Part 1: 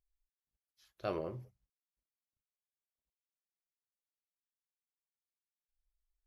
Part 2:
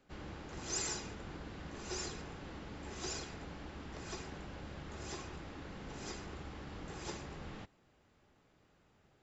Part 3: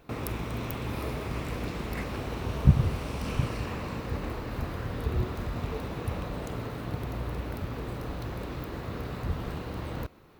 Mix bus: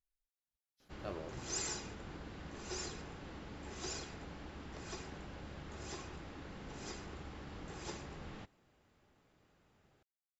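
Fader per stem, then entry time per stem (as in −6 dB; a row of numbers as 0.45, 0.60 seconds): −7.5 dB, −1.5 dB, muted; 0.00 s, 0.80 s, muted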